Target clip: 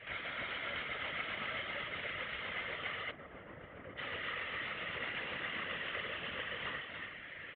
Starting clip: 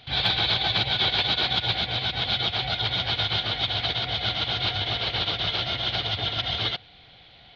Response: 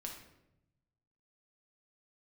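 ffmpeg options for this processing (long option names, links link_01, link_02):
-filter_complex "[0:a]lowshelf=frequency=390:gain=5.5[link_01];[1:a]atrim=start_sample=2205,afade=type=out:start_time=0.22:duration=0.01,atrim=end_sample=10143,asetrate=52920,aresample=44100[link_02];[link_01][link_02]afir=irnorm=-1:irlink=0,acompressor=threshold=-44dB:ratio=5,aecho=1:1:290:0.631,asplit=3[link_03][link_04][link_05];[link_03]afade=type=out:start_time=3.1:duration=0.02[link_06];[link_04]adynamicsmooth=sensitivity=2.5:basefreq=740,afade=type=in:start_time=3.1:duration=0.02,afade=type=out:start_time=3.97:duration=0.02[link_07];[link_05]afade=type=in:start_time=3.97:duration=0.02[link_08];[link_06][link_07][link_08]amix=inputs=3:normalize=0,equalizer=frequency=2000:width_type=o:width=0.89:gain=13,highpass=frequency=180:width_type=q:width=0.5412,highpass=frequency=180:width_type=q:width=1.307,lowpass=frequency=2900:width_type=q:width=0.5176,lowpass=frequency=2900:width_type=q:width=0.7071,lowpass=frequency=2900:width_type=q:width=1.932,afreqshift=-180,afftfilt=real='hypot(re,im)*cos(2*PI*random(0))':imag='hypot(re,im)*sin(2*PI*random(1))':win_size=512:overlap=0.75,highpass=60,volume=7.5dB"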